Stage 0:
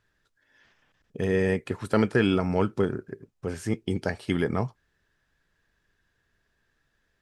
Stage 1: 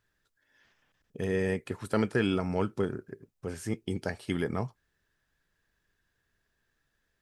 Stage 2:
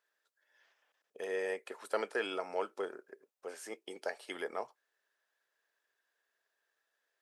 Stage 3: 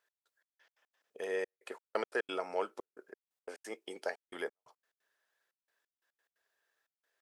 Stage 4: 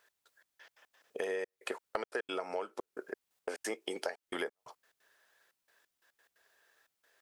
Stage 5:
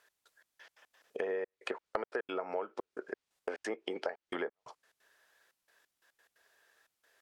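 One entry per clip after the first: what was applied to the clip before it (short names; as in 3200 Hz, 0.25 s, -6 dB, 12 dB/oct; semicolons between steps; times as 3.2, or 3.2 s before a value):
high shelf 9000 Hz +9 dB; gain -5 dB
ladder high-pass 430 Hz, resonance 30%; gain +2.5 dB
step gate "x..xx..x.x.xxxxx" 177 bpm -60 dB; gain +1 dB
compressor 8:1, threshold -45 dBFS, peak gain reduction 16.5 dB; gain +11.5 dB
treble ducked by the level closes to 1700 Hz, closed at -34 dBFS; gain +1 dB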